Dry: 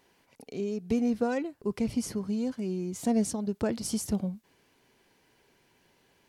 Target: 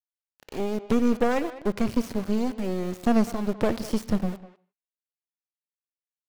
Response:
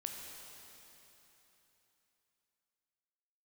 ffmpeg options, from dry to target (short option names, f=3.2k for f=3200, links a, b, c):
-filter_complex "[0:a]acrossover=split=5600[a][b];[b]acompressor=threshold=-48dB:ratio=4:attack=1:release=60[c];[a][c]amix=inputs=2:normalize=0,aeval=exprs='0.158*(cos(1*acos(clip(val(0)/0.158,-1,1)))-cos(1*PI/2))+0.0282*(cos(6*acos(clip(val(0)/0.158,-1,1)))-cos(6*PI/2))':c=same,aeval=exprs='val(0)*gte(abs(val(0)),0.0106)':c=same,asplit=2[d][e];[e]adelay=200,highpass=300,lowpass=3.4k,asoftclip=type=hard:threshold=-25.5dB,volume=-14dB[f];[d][f]amix=inputs=2:normalize=0,asplit=2[g][h];[1:a]atrim=start_sample=2205,afade=t=out:st=0.22:d=0.01,atrim=end_sample=10143,lowpass=4.6k[i];[h][i]afir=irnorm=-1:irlink=0,volume=-8.5dB[j];[g][j]amix=inputs=2:normalize=0,volume=2dB"